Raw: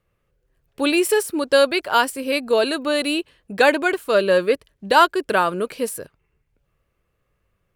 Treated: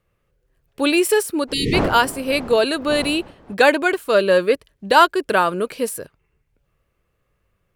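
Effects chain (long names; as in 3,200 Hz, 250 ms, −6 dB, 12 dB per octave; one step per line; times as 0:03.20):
0:01.47–0:03.53: wind on the microphone 610 Hz −32 dBFS
0:01.53–0:01.74: time-frequency box erased 490–1,800 Hz
level +1.5 dB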